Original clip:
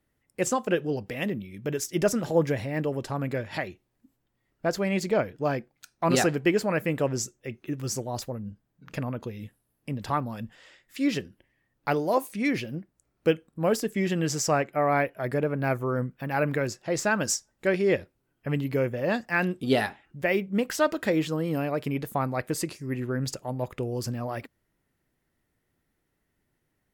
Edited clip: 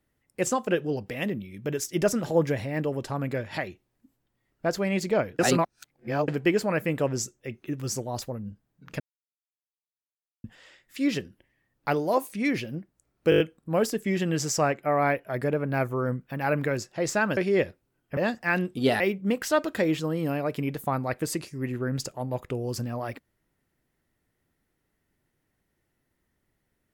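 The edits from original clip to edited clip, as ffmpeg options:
ffmpeg -i in.wav -filter_complex "[0:a]asplit=13[link_01][link_02][link_03][link_04][link_05][link_06][link_07][link_08][link_09][link_10][link_11][link_12][link_13];[link_01]atrim=end=5.392[link_14];[link_02]atrim=start=5.388:end=6.282,asetpts=PTS-STARTPTS,areverse[link_15];[link_03]atrim=start=6.278:end=9,asetpts=PTS-STARTPTS,afade=type=out:start_time=2.718:duration=0.004:curve=hsin[link_16];[link_04]atrim=start=9:end=10.44,asetpts=PTS-STARTPTS,volume=0[link_17];[link_05]atrim=start=10.44:end=13.322,asetpts=PTS-STARTPTS,afade=type=in:duration=0.004:curve=hsin[link_18];[link_06]atrim=start=13.298:end=13.322[link_19];[link_07]atrim=start=13.298:end=13.322[link_20];[link_08]atrim=start=13.298:end=13.322[link_21];[link_09]atrim=start=13.298:end=13.322[link_22];[link_10]atrim=start=13.298:end=17.272[link_23];[link_11]atrim=start=17.698:end=18.502[link_24];[link_12]atrim=start=19.028:end=19.862[link_25];[link_13]atrim=start=20.278[link_26];[link_14][link_15]acrossfade=duration=0.004:curve1=hsin:curve2=hsin[link_27];[link_16][link_17][link_18]concat=n=3:v=0:a=1[link_28];[link_27][link_28]acrossfade=duration=0.004:curve1=hsin:curve2=hsin[link_29];[link_29][link_19]acrossfade=duration=0.004:curve1=hsin:curve2=hsin[link_30];[link_30][link_20]acrossfade=duration=0.004:curve1=hsin:curve2=hsin[link_31];[link_31][link_21]acrossfade=duration=0.004:curve1=hsin:curve2=hsin[link_32];[link_32][link_22]acrossfade=duration=0.004:curve1=hsin:curve2=hsin[link_33];[link_33][link_23]acrossfade=duration=0.004:curve1=hsin:curve2=hsin[link_34];[link_34][link_24]acrossfade=duration=0.004:curve1=hsin:curve2=hsin[link_35];[link_35][link_25]acrossfade=duration=0.004:curve1=hsin:curve2=hsin[link_36];[link_36][link_26]acrossfade=duration=0.004:curve1=hsin:curve2=hsin" out.wav

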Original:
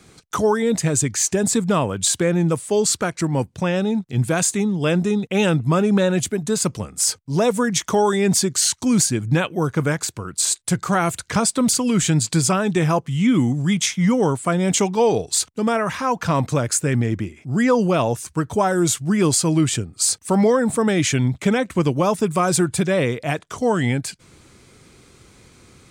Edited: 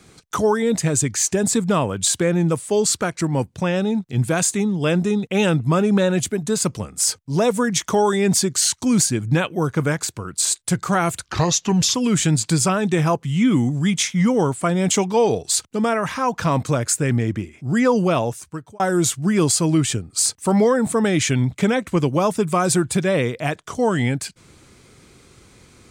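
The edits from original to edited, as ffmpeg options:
ffmpeg -i in.wav -filter_complex "[0:a]asplit=4[link_01][link_02][link_03][link_04];[link_01]atrim=end=11.254[link_05];[link_02]atrim=start=11.25:end=11.78,asetpts=PTS-STARTPTS,asetrate=33516,aresample=44100[link_06];[link_03]atrim=start=11.776:end=18.63,asetpts=PTS-STARTPTS,afade=type=out:start_time=6.184:duration=0.67[link_07];[link_04]atrim=start=18.63,asetpts=PTS-STARTPTS,afade=type=in:duration=0.004:curve=hsin[link_08];[link_05][link_06]acrossfade=duration=0.004:curve1=hsin:curve2=hsin[link_09];[link_07][link_08]concat=n=2:v=0:a=1[link_10];[link_09][link_10]acrossfade=duration=0.004:curve1=hsin:curve2=hsin" out.wav

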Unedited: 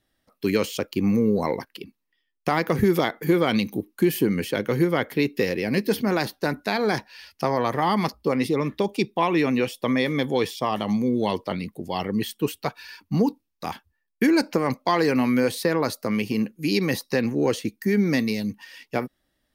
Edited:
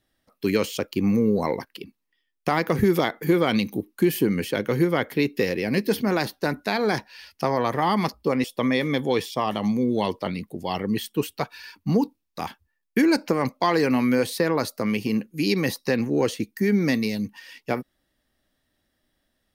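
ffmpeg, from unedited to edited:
ffmpeg -i in.wav -filter_complex "[0:a]asplit=2[link_01][link_02];[link_01]atrim=end=8.442[link_03];[link_02]atrim=start=9.688[link_04];[link_03][link_04]acrossfade=duration=0.004:curve1=hsin:curve2=hsin" out.wav

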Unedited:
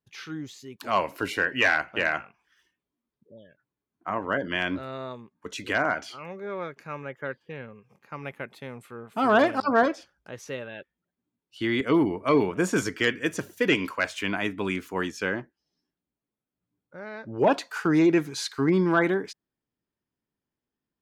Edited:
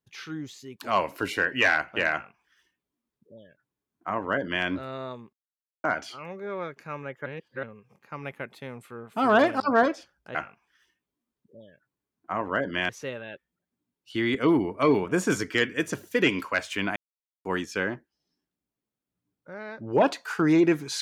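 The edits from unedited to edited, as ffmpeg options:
ffmpeg -i in.wav -filter_complex "[0:a]asplit=9[link_01][link_02][link_03][link_04][link_05][link_06][link_07][link_08][link_09];[link_01]atrim=end=5.33,asetpts=PTS-STARTPTS,afade=type=out:start_time=5.326:duration=0.004:curve=hsin[link_10];[link_02]atrim=start=5.33:end=5.84,asetpts=PTS-STARTPTS,volume=0[link_11];[link_03]atrim=start=5.84:end=7.262,asetpts=PTS-STARTPTS,afade=type=in:duration=0.004:curve=hsin[link_12];[link_04]atrim=start=7.258:end=7.632,asetpts=PTS-STARTPTS,areverse[link_13];[link_05]atrim=start=7.628:end=10.352[link_14];[link_06]atrim=start=2.118:end=4.662[link_15];[link_07]atrim=start=10.348:end=14.42,asetpts=PTS-STARTPTS,afade=type=out:start_time=4.068:duration=0.004:curve=hsin[link_16];[link_08]atrim=start=14.42:end=14.91,asetpts=PTS-STARTPTS,volume=0[link_17];[link_09]atrim=start=14.91,asetpts=PTS-STARTPTS,afade=type=in:duration=0.004:curve=hsin[link_18];[link_10][link_11][link_12]concat=n=3:v=0:a=1[link_19];[link_19][link_13]acrossfade=duration=0.004:curve1=hsin:curve2=hsin[link_20];[link_20][link_14]acrossfade=duration=0.004:curve1=hsin:curve2=hsin[link_21];[link_21][link_15]acrossfade=duration=0.004:curve1=hsin:curve2=hsin[link_22];[link_16][link_17][link_18]concat=n=3:v=0:a=1[link_23];[link_22][link_23]acrossfade=duration=0.004:curve1=hsin:curve2=hsin" out.wav

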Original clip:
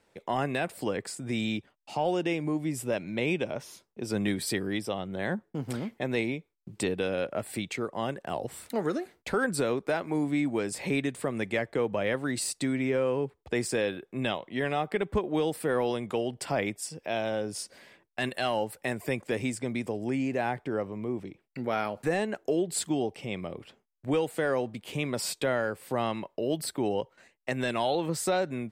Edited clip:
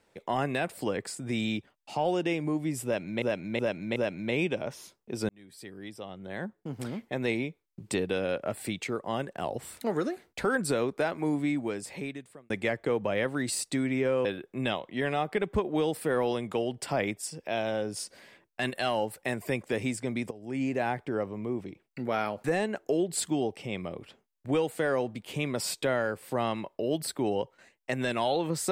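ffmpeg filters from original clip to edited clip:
ffmpeg -i in.wav -filter_complex "[0:a]asplit=8[link_01][link_02][link_03][link_04][link_05][link_06][link_07][link_08];[link_01]atrim=end=3.222[link_09];[link_02]atrim=start=2.848:end=3.222[link_10];[link_03]atrim=start=2.848:end=3.222[link_11];[link_04]atrim=start=2.848:end=4.18,asetpts=PTS-STARTPTS,afade=type=out:start_time=1.328:duration=0.004:curve=hsin[link_12];[link_05]atrim=start=4.18:end=11.39,asetpts=PTS-STARTPTS,afade=type=in:duration=2.08,afade=type=out:start_time=6.05:duration=1.16[link_13];[link_06]atrim=start=11.39:end=13.142,asetpts=PTS-STARTPTS,afade=type=in:duration=0.004:curve=hsin[link_14];[link_07]atrim=start=13.838:end=19.9,asetpts=PTS-STARTPTS,afade=type=out:start_time=6.058:duration=0.004:curve=hsin:silence=0.177828[link_15];[link_08]atrim=start=19.9,asetpts=PTS-STARTPTS,afade=type=in:duration=0.31:curve=qua:silence=0.177828[link_16];[link_09][link_10]acrossfade=duration=0.004:curve1=hsin:curve2=hsin[link_17];[link_17][link_11]acrossfade=duration=0.004:curve1=hsin:curve2=hsin[link_18];[link_12][link_13][link_14]concat=n=3:v=0:a=1[link_19];[link_18][link_19]acrossfade=duration=0.004:curve1=hsin:curve2=hsin[link_20];[link_15][link_16]concat=n=2:v=0:a=1[link_21];[link_20][link_21]acrossfade=duration=0.004:curve1=hsin:curve2=hsin" out.wav

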